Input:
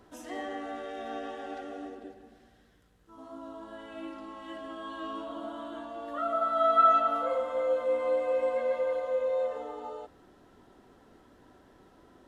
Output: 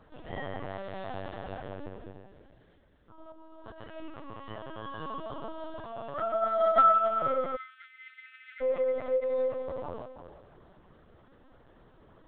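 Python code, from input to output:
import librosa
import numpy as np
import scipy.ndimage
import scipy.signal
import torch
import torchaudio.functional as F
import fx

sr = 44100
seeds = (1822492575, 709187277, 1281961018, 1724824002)

y = fx.over_compress(x, sr, threshold_db=-47.0, ratio=-0.5, at=(3.29, 3.83))
y = fx.echo_feedback(y, sr, ms=330, feedback_pct=30, wet_db=-11.0)
y = fx.lpc_vocoder(y, sr, seeds[0], excitation='pitch_kept', order=10)
y = fx.brickwall_highpass(y, sr, low_hz=1300.0, at=(7.55, 8.6), fade=0.02)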